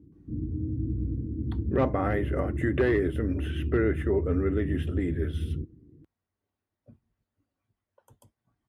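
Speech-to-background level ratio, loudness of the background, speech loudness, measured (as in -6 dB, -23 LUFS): 3.5 dB, -32.5 LUFS, -29.0 LUFS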